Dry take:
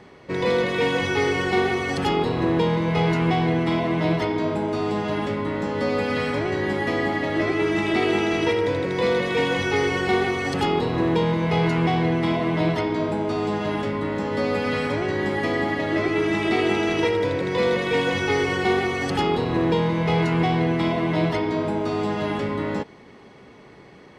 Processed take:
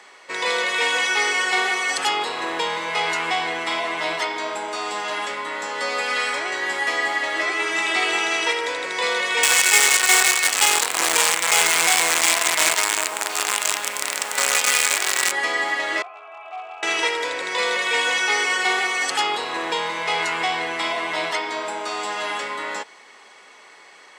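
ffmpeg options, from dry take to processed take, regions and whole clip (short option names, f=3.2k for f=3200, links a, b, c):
-filter_complex "[0:a]asettb=1/sr,asplit=3[a][b][c];[a]atrim=end=9.434[d];[b]atrim=start=9.43:end=15.32,asetpts=PTS-STARTPTS,afade=t=in:d=0.004:c=qsin,afade=t=out:st=5.886:d=0.004:c=qsin,equalizer=f=2.4k:t=o:w=0.44:g=7.5,acrusher=bits=4:dc=4:mix=0:aa=0.000001[e];[c]atrim=start=15.316[f];[d][e]acrossfade=d=0.004:c1=hsin:c2=qsin[g];[g][f]acrossfade=d=0.004:c1=qsin:c2=hsin,asettb=1/sr,asplit=3[h][i][j];[h]atrim=end=16.024[k];[i]atrim=start=16.02:end=16.83,asetpts=PTS-STARTPTS,afade=t=in:d=0.004:c=qsin,afade=t=out:st=0.806:d=0.004:c=qsin,acrossover=split=480 2200:gain=0.0794 1 0.112[l][m][n];[l][m][n]amix=inputs=3:normalize=0,aeval=exprs='0.0794*(abs(mod(val(0)/0.0794+3,4)-2)-1)':c=same,asplit=3[o][p][q];[o]bandpass=f=730:t=q:w=8,volume=0dB[r];[p]bandpass=f=1.09k:t=q:w=8,volume=-6dB[s];[q]bandpass=f=2.44k:t=q:w=8,volume=-9dB[t];[r][s][t]amix=inputs=3:normalize=0[u];[j]atrim=start=16.826[v];[k][u]acrossfade=d=0.004:c1=hsin:c2=qsin[w];[w][v]acrossfade=d=0.004:c1=qsin:c2=hsin,highpass=1k,equalizer=f=7.8k:w=1.8:g=11.5,acontrast=68"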